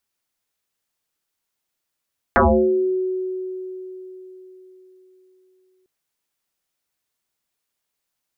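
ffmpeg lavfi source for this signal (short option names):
-f lavfi -i "aevalsrc='0.316*pow(10,-3*t/4.13)*sin(2*PI*372*t+10*pow(10,-3*t/0.67)*sin(2*PI*0.41*372*t))':d=3.5:s=44100"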